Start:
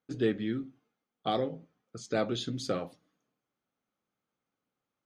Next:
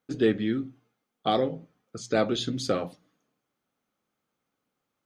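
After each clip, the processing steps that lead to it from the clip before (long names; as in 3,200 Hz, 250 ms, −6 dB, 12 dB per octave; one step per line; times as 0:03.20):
mains-hum notches 60/120/180 Hz
level +5.5 dB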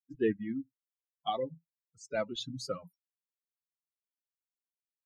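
spectral dynamics exaggerated over time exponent 3
level −3.5 dB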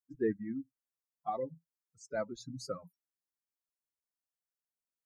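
Butterworth band-reject 3,000 Hz, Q 1.1
level −2.5 dB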